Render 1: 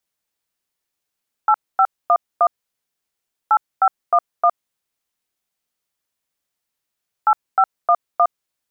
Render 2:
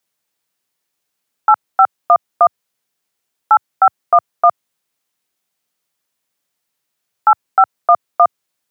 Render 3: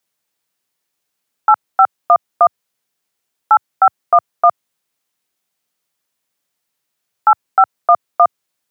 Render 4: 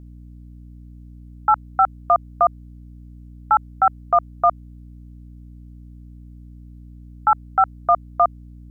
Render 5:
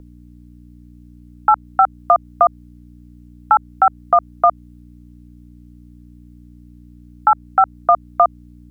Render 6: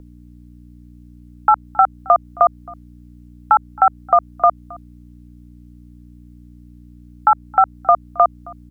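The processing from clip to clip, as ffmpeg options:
-af "highpass=f=97:w=0.5412,highpass=f=97:w=1.3066,volume=5.5dB"
-af anull
-af "aeval=exprs='val(0)+0.02*(sin(2*PI*60*n/s)+sin(2*PI*2*60*n/s)/2+sin(2*PI*3*60*n/s)/3+sin(2*PI*4*60*n/s)/4+sin(2*PI*5*60*n/s)/5)':c=same,volume=-5.5dB"
-filter_complex "[0:a]acrossover=split=240|1300[a][b][c];[a]acompressor=threshold=-51dB:ratio=4[d];[b]acompressor=threshold=-16dB:ratio=4[e];[c]acompressor=threshold=-27dB:ratio=4[f];[d][e][f]amix=inputs=3:normalize=0,volume=6dB"
-af "aecho=1:1:268:0.0668"

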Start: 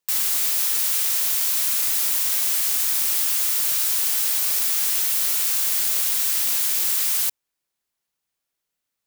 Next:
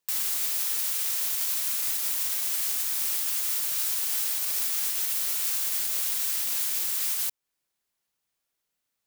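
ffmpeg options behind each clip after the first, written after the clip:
-af "alimiter=limit=-17.5dB:level=0:latency=1:release=238"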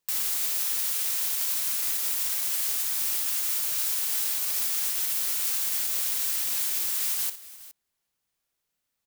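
-af "lowshelf=f=160:g=4.5,aecho=1:1:59|416:0.251|0.133"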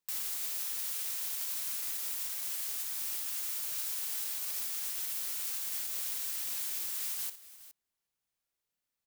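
-af "alimiter=limit=-18.5dB:level=0:latency=1:release=370,volume=-7dB"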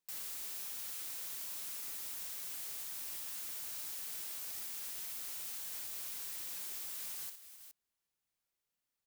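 -af "asoftclip=type=tanh:threshold=-38.5dB,volume=-1.5dB"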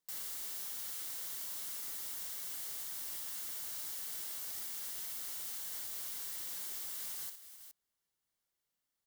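-af "bandreject=f=2.5k:w=8.1,volume=1dB"

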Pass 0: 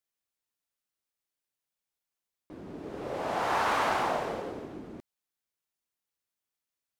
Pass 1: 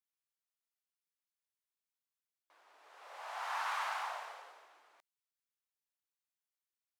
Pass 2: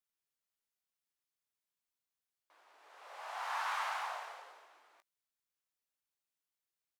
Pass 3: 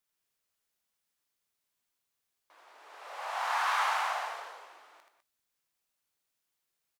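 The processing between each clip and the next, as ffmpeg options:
-af "highpass=f=850:w=0.5412,highpass=f=850:w=1.3066,volume=-8dB"
-filter_complex "[0:a]asplit=2[a][b];[b]adelay=19,volume=-12dB[c];[a][c]amix=inputs=2:normalize=0"
-af "aecho=1:1:79|202:0.596|0.282,volume=6.5dB"

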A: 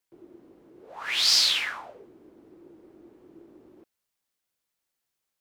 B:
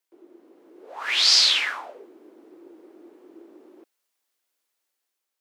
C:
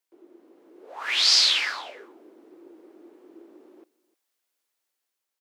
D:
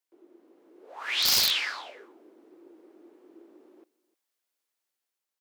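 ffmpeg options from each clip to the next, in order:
-filter_complex "[0:a]acrossover=split=8500[a][b];[b]acompressor=threshold=-59dB:ratio=4:attack=1:release=60[c];[a][c]amix=inputs=2:normalize=0,highpass=f=280:w=0.5412,highpass=f=280:w=1.3066,dynaudnorm=f=110:g=11:m=4.5dB"
-af "aecho=1:1:305:0.0841,volume=-1.5dB"
-af "aeval=exprs='(mod(3.55*val(0)+1,2)-1)/3.55':c=same,volume=-4dB"

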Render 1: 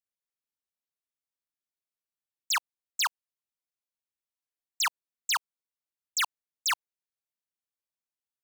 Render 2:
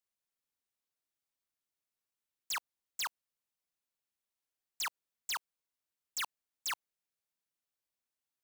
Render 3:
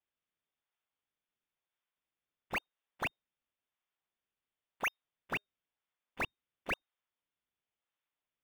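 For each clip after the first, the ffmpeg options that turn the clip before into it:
-af "asoftclip=type=hard:threshold=-36dB,volume=1.5dB"
-filter_complex "[0:a]lowpass=f=3.1k:t=q:w=0.5098,lowpass=f=3.1k:t=q:w=0.6013,lowpass=f=3.1k:t=q:w=0.9,lowpass=f=3.1k:t=q:w=2.563,afreqshift=-3700,asplit=2[a][b];[b]acrusher=samples=24:mix=1:aa=0.000001:lfo=1:lforange=38.4:lforate=0.97,volume=-6dB[c];[a][c]amix=inputs=2:normalize=0,volume=2dB"

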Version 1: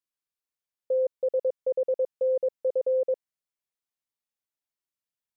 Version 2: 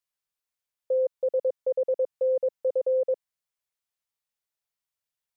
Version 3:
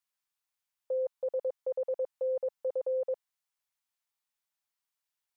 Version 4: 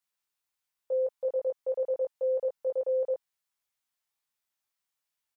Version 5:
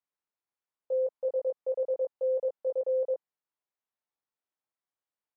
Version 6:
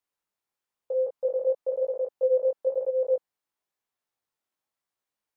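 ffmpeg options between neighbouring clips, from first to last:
-af "equalizer=f=280:t=o:w=0.67:g=-13.5,volume=2.5dB"
-af "lowshelf=f=650:t=q:w=1.5:g=-6"
-filter_complex "[0:a]asplit=2[a][b];[b]adelay=19,volume=-3dB[c];[a][c]amix=inputs=2:normalize=0"
-af "bandpass=f=430:t=q:w=0.57:csg=0"
-af "flanger=delay=16:depth=6.8:speed=1,volume=8dB"

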